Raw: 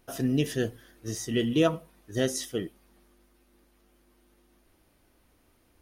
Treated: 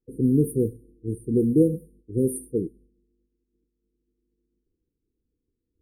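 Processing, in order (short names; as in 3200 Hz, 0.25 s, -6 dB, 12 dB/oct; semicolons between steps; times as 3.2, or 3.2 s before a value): expander -52 dBFS; low-pass opened by the level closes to 2200 Hz, open at -23.5 dBFS; brick-wall FIR band-stop 510–8600 Hz; gain +6 dB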